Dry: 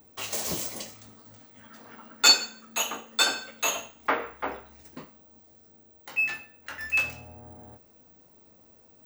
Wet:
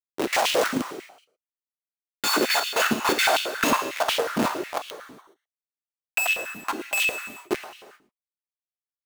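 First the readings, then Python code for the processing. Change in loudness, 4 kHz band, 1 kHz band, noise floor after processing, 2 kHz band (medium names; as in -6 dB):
+2.0 dB, -1.0 dB, +7.5 dB, under -85 dBFS, +4.0 dB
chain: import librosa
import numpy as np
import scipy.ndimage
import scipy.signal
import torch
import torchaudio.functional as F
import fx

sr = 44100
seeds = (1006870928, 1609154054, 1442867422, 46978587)

p1 = fx.reverse_delay_fb(x, sr, ms=403, feedback_pct=56, wet_db=-9.5)
p2 = fx.schmitt(p1, sr, flips_db=-26.5)
p3 = p2 + fx.echo_single(p2, sr, ms=112, db=-16.5, dry=0)
p4 = fx.rev_gated(p3, sr, seeds[0], gate_ms=450, shape='falling', drr_db=4.5)
p5 = fx.filter_held_highpass(p4, sr, hz=11.0, low_hz=250.0, high_hz=2900.0)
y = F.gain(torch.from_numpy(p5), 7.0).numpy()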